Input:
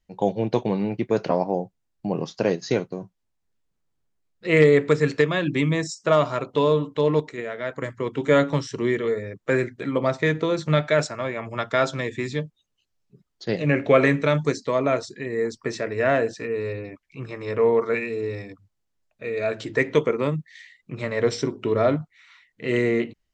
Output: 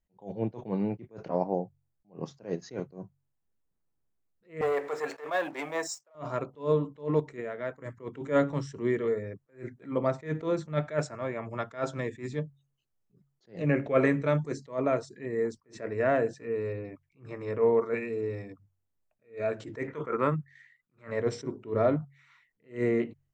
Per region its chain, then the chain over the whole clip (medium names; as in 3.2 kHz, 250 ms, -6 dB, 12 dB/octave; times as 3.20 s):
4.61–6.15 s: compression 2:1, threshold -25 dBFS + waveshaping leveller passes 2 + resonant high-pass 700 Hz, resonance Q 1.9
19.87–21.11 s: gate -41 dBFS, range -9 dB + peaking EQ 1.4 kHz +14 dB 0.99 oct
whole clip: peaking EQ 4 kHz -10.5 dB 1.8 oct; de-hum 46.19 Hz, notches 3; attacks held to a fixed rise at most 210 dB/s; trim -4 dB